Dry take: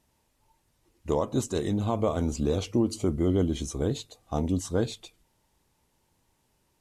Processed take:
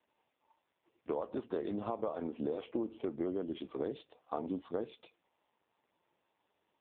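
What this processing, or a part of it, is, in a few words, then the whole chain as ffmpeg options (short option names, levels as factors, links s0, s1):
voicemail: -af "highpass=360,lowpass=2700,acompressor=threshold=0.0251:ratio=10,volume=1.12" -ar 8000 -c:a libopencore_amrnb -b:a 5150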